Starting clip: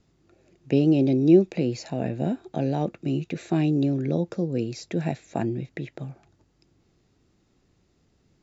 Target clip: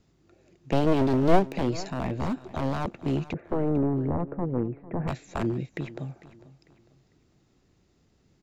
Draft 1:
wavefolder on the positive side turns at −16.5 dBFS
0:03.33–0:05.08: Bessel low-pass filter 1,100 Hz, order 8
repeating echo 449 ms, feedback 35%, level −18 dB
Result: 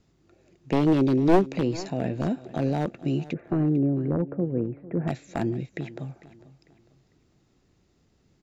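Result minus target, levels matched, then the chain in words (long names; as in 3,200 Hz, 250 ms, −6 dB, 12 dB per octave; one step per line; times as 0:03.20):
wavefolder on the positive side: distortion −8 dB
wavefolder on the positive side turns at −23 dBFS
0:03.33–0:05.08: Bessel low-pass filter 1,100 Hz, order 8
repeating echo 449 ms, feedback 35%, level −18 dB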